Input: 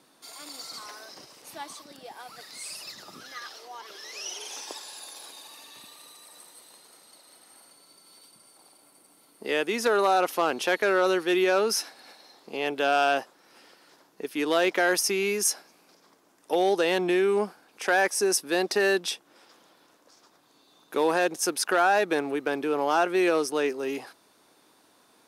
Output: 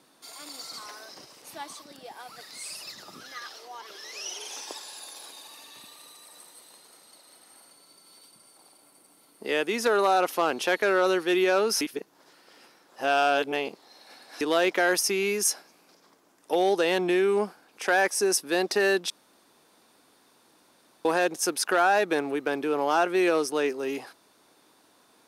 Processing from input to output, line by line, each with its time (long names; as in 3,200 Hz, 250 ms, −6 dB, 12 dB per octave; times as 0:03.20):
0:11.81–0:14.41: reverse
0:19.10–0:21.05: fill with room tone